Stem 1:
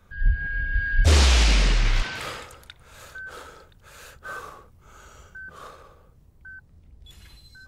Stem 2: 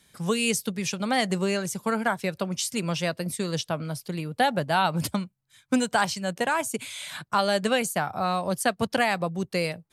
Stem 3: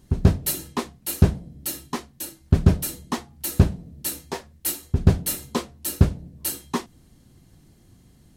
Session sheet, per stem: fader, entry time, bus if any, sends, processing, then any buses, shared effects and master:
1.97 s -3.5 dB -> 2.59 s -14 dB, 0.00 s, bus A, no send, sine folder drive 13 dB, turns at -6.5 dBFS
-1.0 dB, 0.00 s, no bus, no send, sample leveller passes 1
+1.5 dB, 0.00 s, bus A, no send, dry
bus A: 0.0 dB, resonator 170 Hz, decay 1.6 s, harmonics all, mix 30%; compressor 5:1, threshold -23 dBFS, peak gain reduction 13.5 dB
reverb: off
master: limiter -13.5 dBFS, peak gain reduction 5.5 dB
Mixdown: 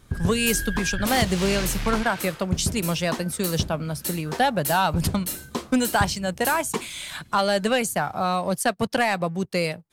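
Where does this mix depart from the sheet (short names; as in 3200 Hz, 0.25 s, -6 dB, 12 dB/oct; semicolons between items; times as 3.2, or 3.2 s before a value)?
stem 1 -3.5 dB -> -14.5 dB; master: missing limiter -13.5 dBFS, peak gain reduction 5.5 dB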